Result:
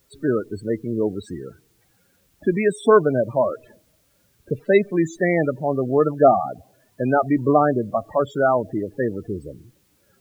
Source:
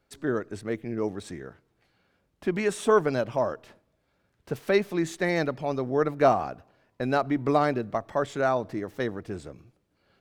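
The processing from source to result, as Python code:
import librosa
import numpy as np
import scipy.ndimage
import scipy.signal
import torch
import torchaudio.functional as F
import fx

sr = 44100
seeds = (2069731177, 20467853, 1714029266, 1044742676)

y = fx.spec_topn(x, sr, count=16)
y = fx.quant_dither(y, sr, seeds[0], bits=12, dither='triangular')
y = y * 10.0 ** (7.0 / 20.0)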